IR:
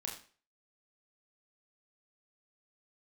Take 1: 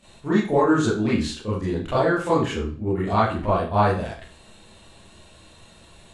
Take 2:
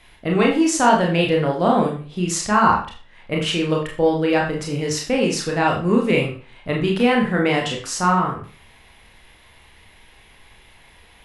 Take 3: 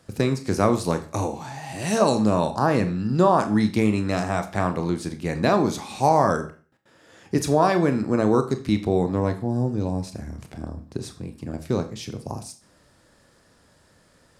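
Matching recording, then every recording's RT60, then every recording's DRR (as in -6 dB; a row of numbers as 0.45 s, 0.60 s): 2; 0.40 s, 0.40 s, 0.40 s; -10.5 dB, -1.0 dB, 7.5 dB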